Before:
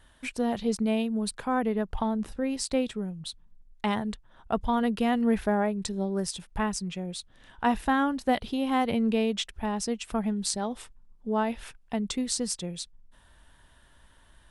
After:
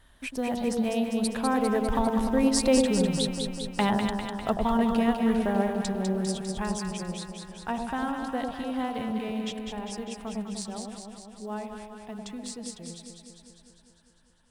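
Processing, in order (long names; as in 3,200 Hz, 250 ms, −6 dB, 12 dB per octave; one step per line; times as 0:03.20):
one scale factor per block 7 bits
source passing by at 0:02.95, 9 m/s, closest 8.4 metres
in parallel at +1 dB: downward compressor, threshold −39 dBFS, peak gain reduction 16.5 dB
on the sum: delay that swaps between a low-pass and a high-pass 100 ms, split 900 Hz, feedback 81%, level −3 dB
level +3 dB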